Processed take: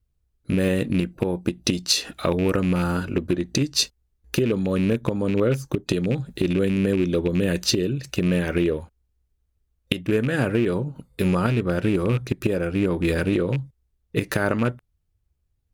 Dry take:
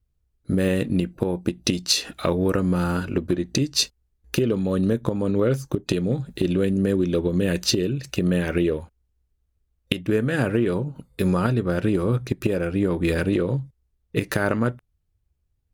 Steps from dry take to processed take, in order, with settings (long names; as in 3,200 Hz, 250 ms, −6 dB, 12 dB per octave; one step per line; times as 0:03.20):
loose part that buzzes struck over −20 dBFS, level −23 dBFS